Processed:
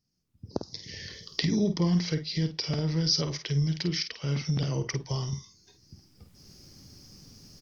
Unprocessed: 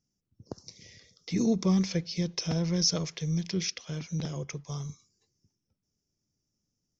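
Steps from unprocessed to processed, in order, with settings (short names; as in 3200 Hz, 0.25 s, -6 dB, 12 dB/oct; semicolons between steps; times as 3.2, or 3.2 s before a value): recorder AGC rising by 20 dB/s; doubler 46 ms -9 dB; speed mistake 48 kHz file played as 44.1 kHz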